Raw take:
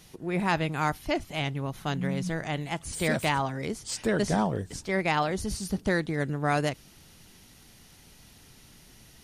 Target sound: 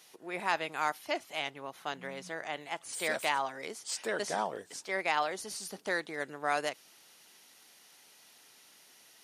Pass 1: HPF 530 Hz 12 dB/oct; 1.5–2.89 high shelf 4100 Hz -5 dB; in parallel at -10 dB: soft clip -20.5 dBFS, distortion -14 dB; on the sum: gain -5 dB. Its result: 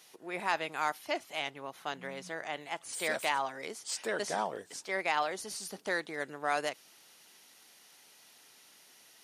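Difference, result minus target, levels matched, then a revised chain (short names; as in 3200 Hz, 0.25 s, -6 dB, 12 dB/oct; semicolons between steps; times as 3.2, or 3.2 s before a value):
soft clip: distortion +16 dB
HPF 530 Hz 12 dB/oct; 1.5–2.89 high shelf 4100 Hz -5 dB; in parallel at -10 dB: soft clip -9.5 dBFS, distortion -30 dB; on the sum: gain -5 dB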